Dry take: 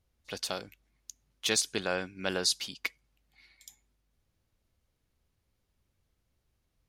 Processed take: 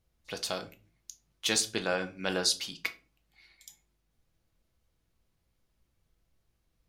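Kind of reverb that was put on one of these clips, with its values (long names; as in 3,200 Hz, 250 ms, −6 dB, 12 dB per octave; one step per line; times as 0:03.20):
rectangular room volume 200 cubic metres, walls furnished, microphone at 0.71 metres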